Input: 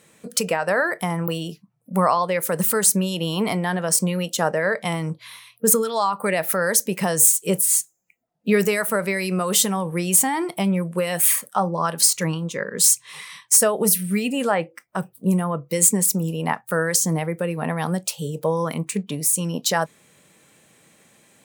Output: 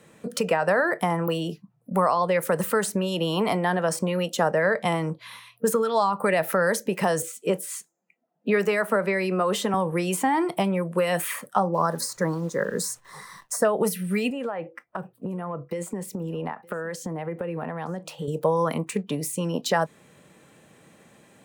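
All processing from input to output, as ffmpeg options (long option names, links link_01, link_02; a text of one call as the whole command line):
ffmpeg -i in.wav -filter_complex "[0:a]asettb=1/sr,asplit=3[link_01][link_02][link_03];[link_01]atrim=end=7.224[link_04];[link_02]atrim=start=7.22:end=9.74,asetpts=PTS-STARTPTS,afade=type=in:duration=0.004:curve=qsin,afade=type=out:start_time=2.516:duration=0.004:curve=qsin,highpass=frequency=180:width=0.5412,highpass=frequency=180:width=1.3066,highshelf=frequency=5100:gain=-11.5[link_05];[link_03]atrim=start=9.736[link_06];[link_04][link_05]acrossfade=duration=0.004:curve1=hsin:curve2=qsin[link_07];[link_07][link_06]acrossfade=duration=0.004:curve1=qsin:curve2=hsin,asettb=1/sr,asplit=3[link_08][link_09][link_10];[link_08]atrim=end=11.744[link_11];[link_09]atrim=start=11.74:end=13.65,asetpts=PTS-STARTPTS,afade=type=in:duration=0.004:curve=qsin,afade=type=out:start_time=1.906:duration=0.004:curve=qsin,asuperstop=centerf=2800:order=4:qfactor=1.1,acrusher=bits=9:dc=4:mix=0:aa=0.000001[link_12];[link_10]atrim=start=13.646[link_13];[link_11][link_12]acrossfade=duration=0.004:curve1=hsin:curve2=qsin[link_14];[link_14][link_13]acrossfade=duration=0.004:curve1=qsin:curve2=hsin,asettb=1/sr,asplit=3[link_15][link_16][link_17];[link_15]atrim=end=14.304[link_18];[link_16]atrim=start=14.3:end=18.28,asetpts=PTS-STARTPTS,afade=type=in:duration=0.004:curve=qsin,afade=type=out:start_time=3.976:duration=0.004:curve=qsin,bass=frequency=250:gain=-6,treble=frequency=4000:gain=-11,acompressor=threshold=-29dB:ratio=12:attack=3.2:release=140:knee=1:detection=peak,aecho=1:1:916:0.0631,atrim=end_sample=175518[link_19];[link_17]atrim=start=18.276[link_20];[link_18][link_19]acrossfade=duration=0.004:curve1=hsin:curve2=qsin[link_21];[link_21][link_20]acrossfade=duration=0.004:curve1=qsin:curve2=hsin,highshelf=frequency=2600:gain=-11,bandreject=frequency=2200:width=22,acrossover=split=270|610|3600[link_22][link_23][link_24][link_25];[link_22]acompressor=threshold=-37dB:ratio=4[link_26];[link_23]acompressor=threshold=-31dB:ratio=4[link_27];[link_24]acompressor=threshold=-26dB:ratio=4[link_28];[link_25]acompressor=threshold=-36dB:ratio=4[link_29];[link_26][link_27][link_28][link_29]amix=inputs=4:normalize=0,volume=4.5dB" out.wav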